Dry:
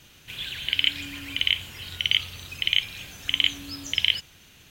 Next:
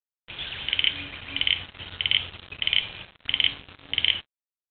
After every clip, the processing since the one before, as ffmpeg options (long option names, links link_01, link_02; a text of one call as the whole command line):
ffmpeg -i in.wav -af "bandreject=frequency=141.2:width_type=h:width=4,bandreject=frequency=282.4:width_type=h:width=4,bandreject=frequency=423.6:width_type=h:width=4,bandreject=frequency=564.8:width_type=h:width=4,bandreject=frequency=706:width_type=h:width=4,bandreject=frequency=847.2:width_type=h:width=4,bandreject=frequency=988.4:width_type=h:width=4,bandreject=frequency=1129.6:width_type=h:width=4,bandreject=frequency=1270.8:width_type=h:width=4,bandreject=frequency=1412:width_type=h:width=4,bandreject=frequency=1553.2:width_type=h:width=4,bandreject=frequency=1694.4:width_type=h:width=4,bandreject=frequency=1835.6:width_type=h:width=4,bandreject=frequency=1976.8:width_type=h:width=4,bandreject=frequency=2118:width_type=h:width=4,bandreject=frequency=2259.2:width_type=h:width=4,bandreject=frequency=2400.4:width_type=h:width=4,bandreject=frequency=2541.6:width_type=h:width=4,bandreject=frequency=2682.8:width_type=h:width=4,bandreject=frequency=2824:width_type=h:width=4,bandreject=frequency=2965.2:width_type=h:width=4,bandreject=frequency=3106.4:width_type=h:width=4,bandreject=frequency=3247.6:width_type=h:width=4,bandreject=frequency=3388.8:width_type=h:width=4,bandreject=frequency=3530:width_type=h:width=4,bandreject=frequency=3671.2:width_type=h:width=4,bandreject=frequency=3812.4:width_type=h:width=4,bandreject=frequency=3953.6:width_type=h:width=4,bandreject=frequency=4094.8:width_type=h:width=4,bandreject=frequency=4236:width_type=h:width=4,bandreject=frequency=4377.2:width_type=h:width=4,bandreject=frequency=4518.4:width_type=h:width=4,aresample=8000,acrusher=bits=5:mix=0:aa=0.5,aresample=44100" out.wav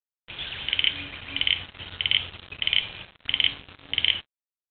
ffmpeg -i in.wav -af anull out.wav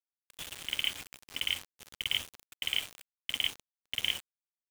ffmpeg -i in.wav -af "acrusher=bits=4:mix=0:aa=0.000001,agate=range=-33dB:threshold=-46dB:ratio=3:detection=peak,volume=-9dB" out.wav